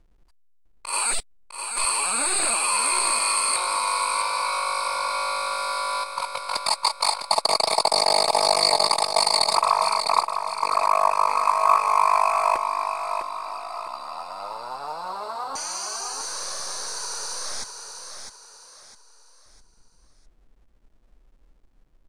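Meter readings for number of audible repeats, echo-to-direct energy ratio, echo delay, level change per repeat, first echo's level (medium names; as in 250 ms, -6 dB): 4, -6.5 dB, 655 ms, -8.5 dB, -7.0 dB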